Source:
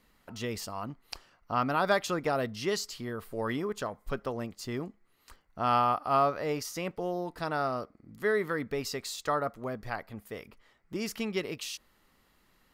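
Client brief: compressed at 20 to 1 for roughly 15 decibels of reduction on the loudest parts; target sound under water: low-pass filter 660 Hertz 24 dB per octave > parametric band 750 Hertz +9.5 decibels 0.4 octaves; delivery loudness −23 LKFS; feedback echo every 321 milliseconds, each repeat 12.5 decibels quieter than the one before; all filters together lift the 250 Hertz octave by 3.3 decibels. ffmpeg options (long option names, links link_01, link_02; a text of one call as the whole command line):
ffmpeg -i in.wav -af "equalizer=frequency=250:width_type=o:gain=4,acompressor=threshold=-35dB:ratio=20,lowpass=frequency=660:width=0.5412,lowpass=frequency=660:width=1.3066,equalizer=frequency=750:width_type=o:width=0.4:gain=9.5,aecho=1:1:321|642|963:0.237|0.0569|0.0137,volume=19dB" out.wav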